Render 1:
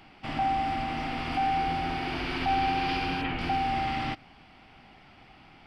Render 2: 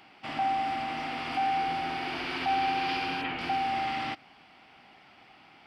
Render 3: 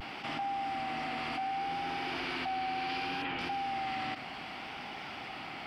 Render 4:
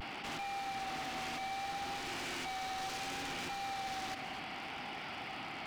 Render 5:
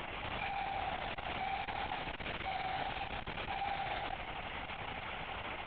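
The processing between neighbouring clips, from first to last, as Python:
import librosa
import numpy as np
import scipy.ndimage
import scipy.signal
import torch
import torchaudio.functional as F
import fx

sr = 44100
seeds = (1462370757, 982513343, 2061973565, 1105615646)

y1 = fx.highpass(x, sr, hz=380.0, slope=6)
y2 = fx.vibrato(y1, sr, rate_hz=0.66, depth_cents=40.0)
y2 = fx.env_flatten(y2, sr, amount_pct=70)
y2 = y2 * 10.0 ** (-8.5 / 20.0)
y3 = 10.0 ** (-35.0 / 20.0) * (np.abs((y2 / 10.0 ** (-35.0 / 20.0) + 3.0) % 4.0 - 2.0) - 1.0)
y3 = y3 + 10.0 ** (-11.5 / 20.0) * np.pad(y3, (int(249 * sr / 1000.0), 0))[:len(y3)]
y3 = y3 * 10.0 ** (-1.0 / 20.0)
y4 = fx.air_absorb(y3, sr, metres=60.0)
y4 = fx.lpc_vocoder(y4, sr, seeds[0], excitation='whisper', order=10)
y4 = fx.transformer_sat(y4, sr, knee_hz=230.0)
y4 = y4 * 10.0 ** (3.0 / 20.0)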